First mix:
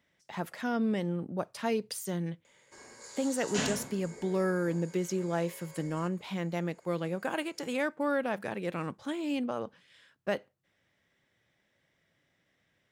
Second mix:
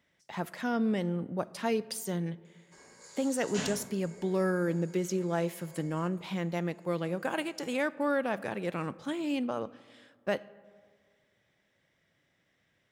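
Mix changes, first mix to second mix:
background −4.0 dB
reverb: on, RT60 1.9 s

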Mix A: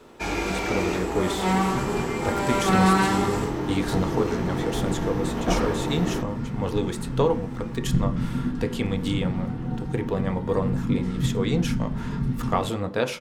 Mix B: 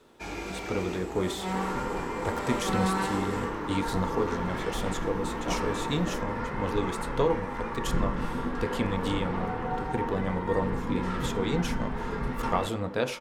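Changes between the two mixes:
speech −3.5 dB
first sound −9.5 dB
second sound: add graphic EQ with 10 bands 125 Hz −12 dB, 250 Hz −6 dB, 500 Hz +10 dB, 1,000 Hz +10 dB, 2,000 Hz +8 dB

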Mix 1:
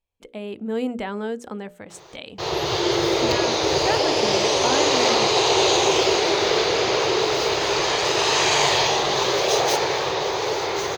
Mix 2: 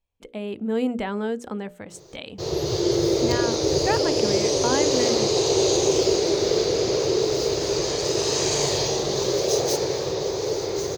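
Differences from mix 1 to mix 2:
background: add flat-topped bell 1,600 Hz −12.5 dB 2.6 octaves
master: add low-shelf EQ 250 Hz +4 dB

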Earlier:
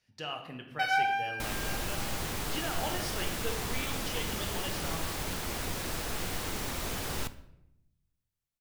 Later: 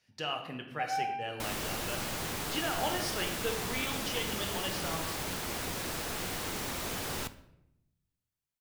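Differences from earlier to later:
speech +3.0 dB
first sound: add formant filter a
master: add low-shelf EQ 60 Hz −12 dB

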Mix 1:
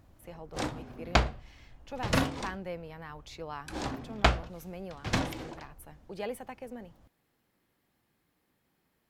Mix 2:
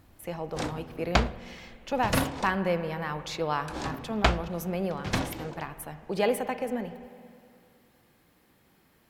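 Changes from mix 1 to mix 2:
speech +9.5 dB
reverb: on, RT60 2.3 s

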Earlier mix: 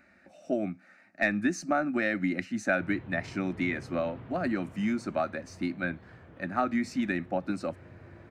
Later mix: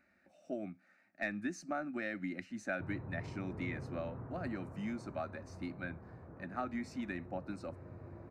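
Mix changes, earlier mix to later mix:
speech −11.0 dB
background: add low-pass filter 1,400 Hz 24 dB per octave

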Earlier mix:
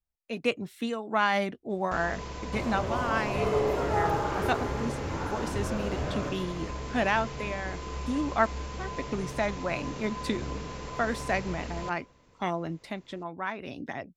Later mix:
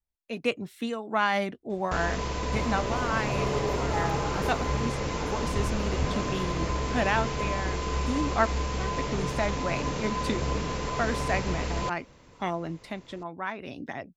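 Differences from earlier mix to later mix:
first sound +8.5 dB
reverb: off

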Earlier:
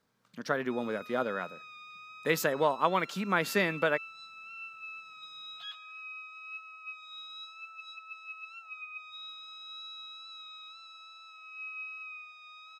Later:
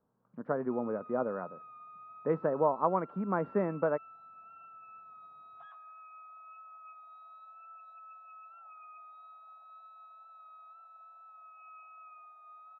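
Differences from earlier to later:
background +7.5 dB
master: add low-pass filter 1,100 Hz 24 dB per octave

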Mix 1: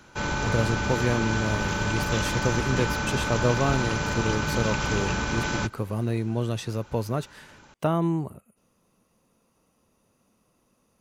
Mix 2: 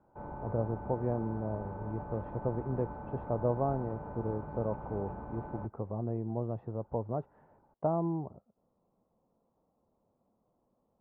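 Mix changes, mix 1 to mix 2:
background −6.5 dB
master: add transistor ladder low-pass 940 Hz, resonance 45%

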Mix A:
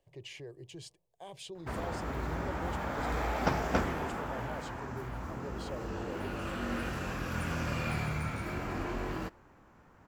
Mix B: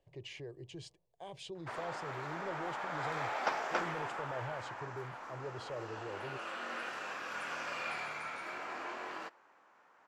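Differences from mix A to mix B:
background: add high-pass filter 680 Hz 12 dB per octave
master: add high-frequency loss of the air 60 metres

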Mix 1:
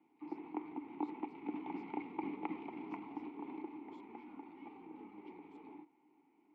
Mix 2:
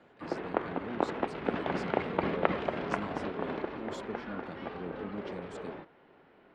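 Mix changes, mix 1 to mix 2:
speech: add parametric band 240 Hz +11.5 dB 1.8 octaves
master: remove formant filter u

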